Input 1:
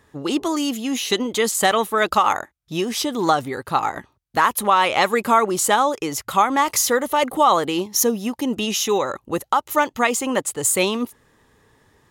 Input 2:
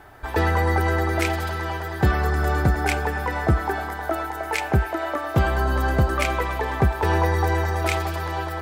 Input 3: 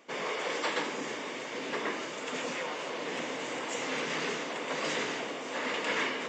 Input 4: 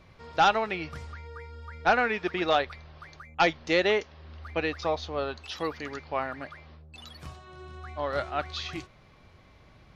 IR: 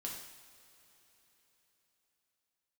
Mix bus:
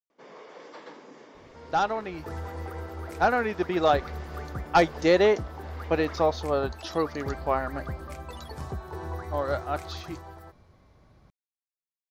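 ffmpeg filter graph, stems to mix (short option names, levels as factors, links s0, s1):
-filter_complex "[1:a]adelay=1900,volume=0.15[s0];[2:a]lowpass=f=5500:w=0.5412,lowpass=f=5500:w=1.3066,adelay=100,volume=0.299[s1];[3:a]dynaudnorm=f=250:g=17:m=2.37,adelay=1350,volume=0.841[s2];[s0][s1][s2]amix=inputs=3:normalize=0,equalizer=f=2700:t=o:w=1.4:g=-10.5"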